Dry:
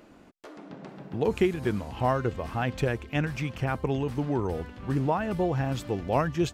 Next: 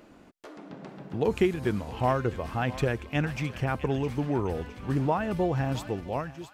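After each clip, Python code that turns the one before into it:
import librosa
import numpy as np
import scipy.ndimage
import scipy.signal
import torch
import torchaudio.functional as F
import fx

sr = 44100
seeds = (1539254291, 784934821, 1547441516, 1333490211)

y = fx.fade_out_tail(x, sr, length_s=0.76)
y = fx.echo_thinned(y, sr, ms=663, feedback_pct=54, hz=1200.0, wet_db=-12.0)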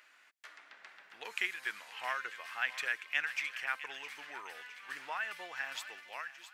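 y = fx.highpass_res(x, sr, hz=1800.0, q=2.1)
y = y * librosa.db_to_amplitude(-2.5)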